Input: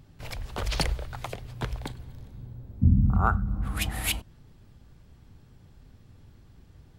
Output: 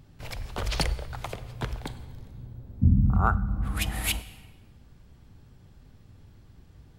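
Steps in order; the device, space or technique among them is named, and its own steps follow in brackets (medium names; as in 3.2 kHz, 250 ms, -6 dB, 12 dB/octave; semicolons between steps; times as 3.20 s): compressed reverb return (on a send at -12.5 dB: reverberation RT60 1.3 s, pre-delay 40 ms + compression, threshold -27 dBFS, peak gain reduction 11 dB)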